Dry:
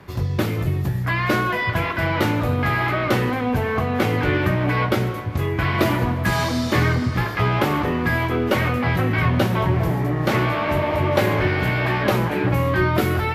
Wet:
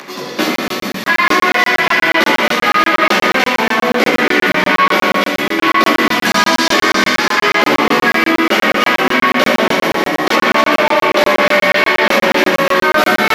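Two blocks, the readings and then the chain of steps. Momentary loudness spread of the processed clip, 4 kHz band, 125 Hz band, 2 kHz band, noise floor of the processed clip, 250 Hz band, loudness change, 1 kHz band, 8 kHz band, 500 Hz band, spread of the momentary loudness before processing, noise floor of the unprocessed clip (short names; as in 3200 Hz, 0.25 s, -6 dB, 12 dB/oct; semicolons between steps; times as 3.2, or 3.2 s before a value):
4 LU, +15.0 dB, -11.5 dB, +12.5 dB, under -85 dBFS, +5.5 dB, +9.0 dB, +10.5 dB, +14.5 dB, +8.0 dB, 3 LU, -25 dBFS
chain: upward compressor, threshold -35 dBFS; EQ curve 500 Hz 0 dB, 5900 Hz +9 dB, 8800 Hz +1 dB; chorus voices 2, 0.52 Hz, delay 14 ms, depth 1.5 ms; steep high-pass 190 Hz 48 dB/oct; split-band echo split 2000 Hz, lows 83 ms, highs 0.293 s, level -4.5 dB; Schroeder reverb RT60 1.9 s, combs from 27 ms, DRR 2.5 dB; maximiser +10.5 dB; crackling interface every 0.12 s, samples 1024, zero, from 0.56; gain -1 dB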